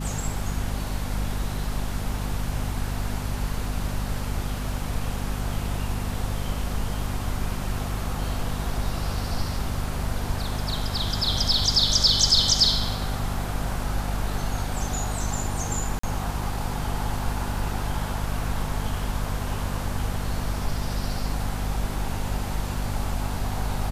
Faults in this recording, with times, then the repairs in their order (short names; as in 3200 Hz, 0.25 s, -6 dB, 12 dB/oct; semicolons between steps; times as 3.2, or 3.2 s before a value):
hum 50 Hz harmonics 5 -30 dBFS
15.99–16.03 gap 44 ms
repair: de-hum 50 Hz, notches 5; interpolate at 15.99, 44 ms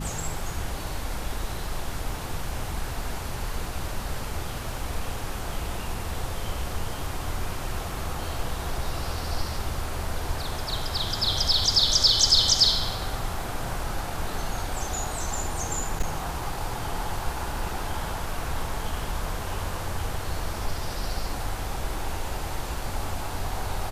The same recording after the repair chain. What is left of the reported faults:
none